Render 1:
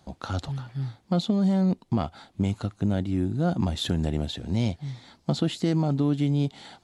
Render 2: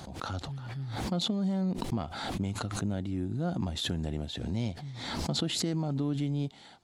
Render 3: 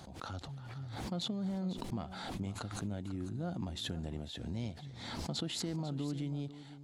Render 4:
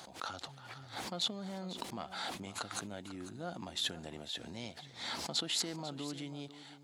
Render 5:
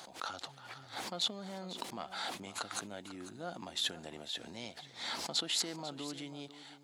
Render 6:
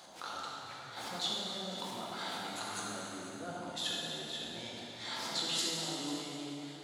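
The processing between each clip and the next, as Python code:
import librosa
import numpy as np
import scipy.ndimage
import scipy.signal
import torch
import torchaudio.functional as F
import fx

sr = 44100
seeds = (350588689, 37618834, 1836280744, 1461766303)

y1 = fx.pre_swell(x, sr, db_per_s=38.0)
y1 = y1 * 10.0 ** (-7.5 / 20.0)
y2 = y1 + 10.0 ** (-14.0 / 20.0) * np.pad(y1, (int(495 * sr / 1000.0), 0))[:len(y1)]
y2 = y2 * 10.0 ** (-7.0 / 20.0)
y3 = fx.highpass(y2, sr, hz=890.0, slope=6)
y3 = y3 * 10.0 ** (6.0 / 20.0)
y4 = fx.low_shelf(y3, sr, hz=160.0, db=-10.5)
y4 = y4 * 10.0 ** (1.0 / 20.0)
y5 = fx.rev_plate(y4, sr, seeds[0], rt60_s=3.3, hf_ratio=0.75, predelay_ms=0, drr_db=-5.5)
y5 = y5 * 10.0 ** (-5.0 / 20.0)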